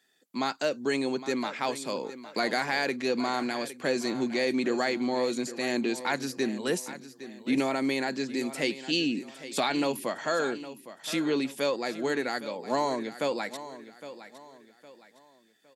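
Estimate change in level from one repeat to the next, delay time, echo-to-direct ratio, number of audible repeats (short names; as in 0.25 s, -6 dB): -9.0 dB, 0.811 s, -13.5 dB, 3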